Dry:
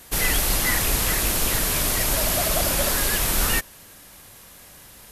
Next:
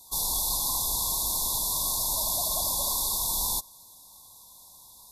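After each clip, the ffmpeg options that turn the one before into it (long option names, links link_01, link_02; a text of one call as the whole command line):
ffmpeg -i in.wav -af "afftfilt=real='re*(1-between(b*sr/4096,1100,3400))':imag='im*(1-between(b*sr/4096,1100,3400))':win_size=4096:overlap=0.75,lowshelf=frequency=720:width_type=q:width=1.5:gain=-11,volume=-3.5dB" out.wav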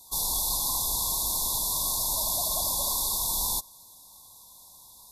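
ffmpeg -i in.wav -af anull out.wav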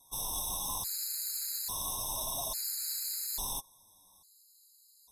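ffmpeg -i in.wav -af "flanger=delay=7.3:depth=3.8:regen=42:speed=0.84:shape=sinusoidal,aeval=exprs='0.126*(cos(1*acos(clip(val(0)/0.126,-1,1)))-cos(1*PI/2))+0.00316*(cos(5*acos(clip(val(0)/0.126,-1,1)))-cos(5*PI/2))+0.00891*(cos(7*acos(clip(val(0)/0.126,-1,1)))-cos(7*PI/2))':channel_layout=same,afftfilt=real='re*gt(sin(2*PI*0.59*pts/sr)*(1-2*mod(floor(b*sr/1024/1300),2)),0)':imag='im*gt(sin(2*PI*0.59*pts/sr)*(1-2*mod(floor(b*sr/1024/1300),2)),0)':win_size=1024:overlap=0.75" out.wav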